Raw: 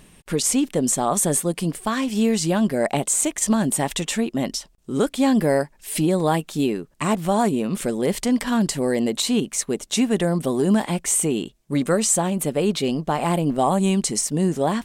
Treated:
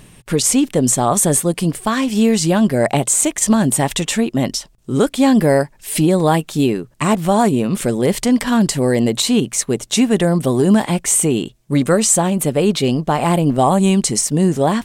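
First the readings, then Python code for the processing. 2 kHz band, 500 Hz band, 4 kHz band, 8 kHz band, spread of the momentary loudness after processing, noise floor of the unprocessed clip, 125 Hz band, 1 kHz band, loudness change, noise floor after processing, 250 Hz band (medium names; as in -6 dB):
+5.5 dB, +5.5 dB, +5.5 dB, +5.5 dB, 5 LU, -56 dBFS, +7.5 dB, +5.5 dB, +6.0 dB, -49 dBFS, +6.0 dB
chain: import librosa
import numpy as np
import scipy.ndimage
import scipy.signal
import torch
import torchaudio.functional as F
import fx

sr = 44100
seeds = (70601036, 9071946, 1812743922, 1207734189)

y = fx.peak_eq(x, sr, hz=120.0, db=10.5, octaves=0.3)
y = y * 10.0 ** (5.5 / 20.0)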